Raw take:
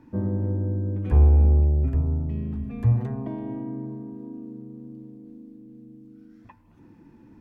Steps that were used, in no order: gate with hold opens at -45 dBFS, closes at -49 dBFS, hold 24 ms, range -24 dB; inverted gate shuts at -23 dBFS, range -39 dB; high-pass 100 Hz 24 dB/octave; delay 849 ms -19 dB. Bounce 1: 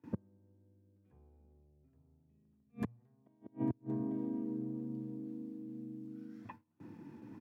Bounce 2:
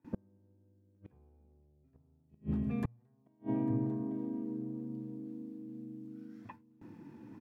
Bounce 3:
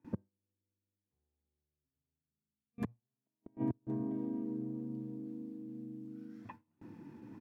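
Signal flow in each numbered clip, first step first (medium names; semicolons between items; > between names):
delay > gate with hold > inverted gate > high-pass; high-pass > gate with hold > delay > inverted gate; delay > inverted gate > high-pass > gate with hold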